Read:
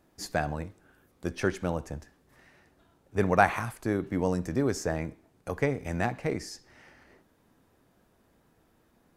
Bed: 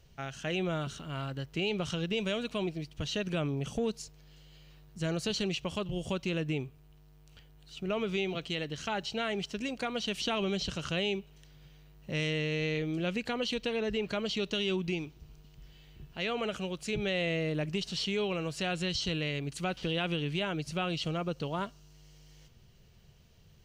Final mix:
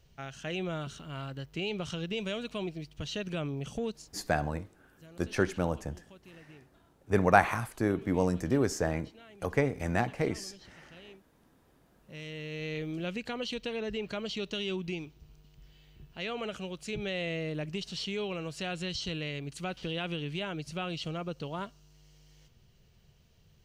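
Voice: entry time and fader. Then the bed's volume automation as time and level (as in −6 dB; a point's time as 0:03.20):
3.95 s, 0.0 dB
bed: 0:03.86 −2.5 dB
0:04.59 −21 dB
0:11.57 −21 dB
0:12.80 −3 dB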